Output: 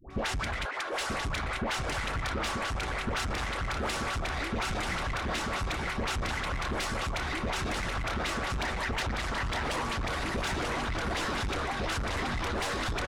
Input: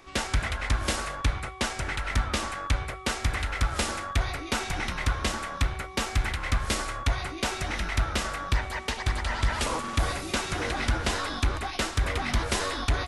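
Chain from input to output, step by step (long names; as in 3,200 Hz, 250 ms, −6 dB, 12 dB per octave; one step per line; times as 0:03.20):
low-pass filter 3,200 Hz 6 dB per octave
all-pass dispersion highs, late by 106 ms, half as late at 810 Hz
brickwall limiter −24 dBFS, peak gain reduction 11 dB
0:00.65–0:01.13: Butterworth high-pass 350 Hz
repeating echo 937 ms, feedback 41%, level −4 dB
soft clipping −31.5 dBFS, distortion −11 dB
harmonic and percussive parts rebalanced percussive +7 dB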